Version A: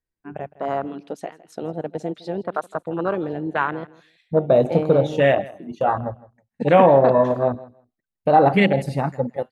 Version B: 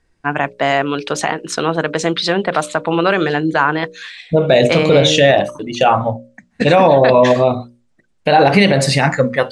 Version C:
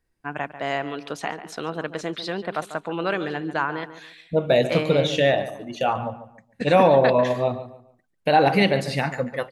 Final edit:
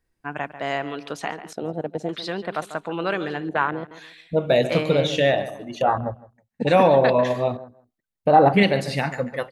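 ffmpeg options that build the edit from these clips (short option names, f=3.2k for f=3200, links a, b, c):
-filter_complex "[0:a]asplit=4[a][b][c][d];[2:a]asplit=5[e][f][g][h][i];[e]atrim=end=1.532[j];[a]atrim=start=1.528:end=2.092[k];[f]atrim=start=2.088:end=3.492[l];[b]atrim=start=3.488:end=3.912[m];[g]atrim=start=3.908:end=5.822[n];[c]atrim=start=5.818:end=6.672[o];[h]atrim=start=6.668:end=7.572[p];[d]atrim=start=7.568:end=8.632[q];[i]atrim=start=8.628[r];[j][k]acrossfade=d=0.004:c1=hsin:c2=hsin[s];[s][l]acrossfade=d=0.004:c1=hsin:c2=hsin[t];[t][m]acrossfade=d=0.004:c1=hsin:c2=hsin[u];[u][n]acrossfade=d=0.004:c1=hsin:c2=hsin[v];[v][o]acrossfade=d=0.004:c1=hsin:c2=hsin[w];[w][p]acrossfade=d=0.004:c1=hsin:c2=hsin[x];[x][q]acrossfade=d=0.004:c1=hsin:c2=hsin[y];[y][r]acrossfade=d=0.004:c1=hsin:c2=hsin"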